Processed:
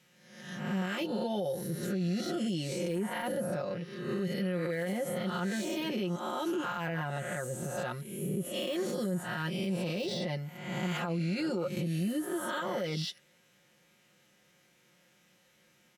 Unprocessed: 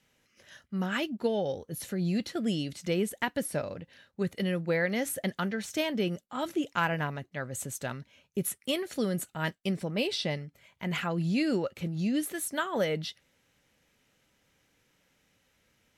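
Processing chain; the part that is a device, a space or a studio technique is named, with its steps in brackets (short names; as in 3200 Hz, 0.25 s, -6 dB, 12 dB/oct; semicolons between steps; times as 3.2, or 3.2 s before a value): spectral swells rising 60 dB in 0.89 s; comb 5.6 ms, depth 84%; dynamic EQ 2200 Hz, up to -4 dB, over -43 dBFS, Q 1.4; podcast mastering chain (HPF 100 Hz 12 dB/oct; de-esser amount 85%; compressor 2.5:1, threshold -26 dBFS, peak gain reduction 5.5 dB; limiter -25 dBFS, peak gain reduction 9.5 dB; MP3 128 kbps 44100 Hz)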